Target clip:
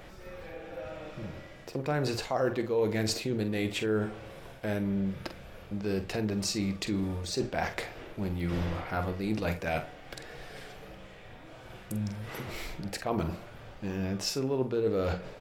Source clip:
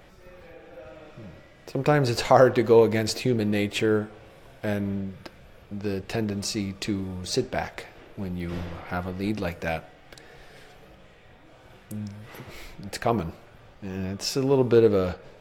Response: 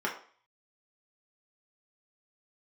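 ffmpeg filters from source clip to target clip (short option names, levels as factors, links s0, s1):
-filter_complex "[0:a]bandreject=f=60:t=h:w=6,bandreject=f=120:t=h:w=6,bandreject=f=180:t=h:w=6,areverse,acompressor=threshold=0.0282:ratio=5,areverse,asplit=2[s0][s1];[s1]adelay=46,volume=0.299[s2];[s0][s2]amix=inputs=2:normalize=0,volume=1.41"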